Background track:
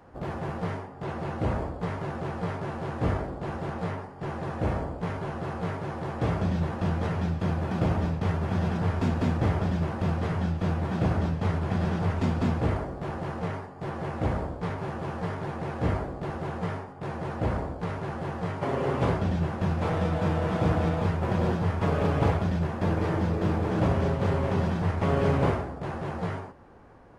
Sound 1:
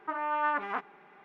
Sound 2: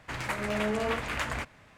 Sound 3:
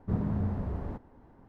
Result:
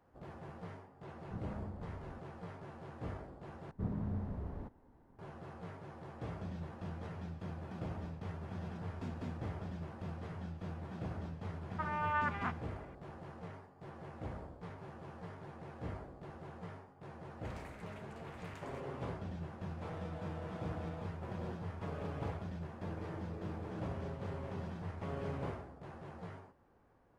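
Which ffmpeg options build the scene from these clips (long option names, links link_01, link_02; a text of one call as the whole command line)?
ffmpeg -i bed.wav -i cue0.wav -i cue1.wav -i cue2.wav -filter_complex "[3:a]asplit=2[link_01][link_02];[0:a]volume=-16.5dB[link_03];[1:a]highpass=frequency=900:poles=1[link_04];[2:a]acompressor=threshold=-34dB:ratio=6:attack=3.2:release=140:knee=1:detection=peak[link_05];[link_03]asplit=2[link_06][link_07];[link_06]atrim=end=3.714[link_08];[link_02]atrim=end=1.48,asetpts=PTS-STARTPTS,volume=-8dB[link_09];[link_07]atrim=start=5.186[link_10];[link_01]atrim=end=1.48,asetpts=PTS-STARTPTS,volume=-15dB,afade=type=in:duration=0.004:curve=hsin,afade=type=out:start_time=1.476:duration=0.004:curve=hsin,adelay=1220[link_11];[link_04]atrim=end=1.24,asetpts=PTS-STARTPTS,volume=-3dB,afade=type=in:duration=0.004:curve=hsin,afade=type=out:start_time=1.236:duration=0.004:curve=hsin,adelay=11710[link_12];[link_05]atrim=end=1.77,asetpts=PTS-STARTPTS,volume=-16dB,afade=type=in:duration=0.004:curve=hsin,afade=type=out:start_time=1.766:duration=0.004:curve=hsin,adelay=17360[link_13];[link_08][link_09]acrossfade=duration=0.004:curve1=hsin:curve2=hsin[link_14];[link_14][link_10]acrossfade=duration=0.004:curve1=hsin:curve2=hsin[link_15];[link_15][link_11][link_12][link_13]amix=inputs=4:normalize=0" out.wav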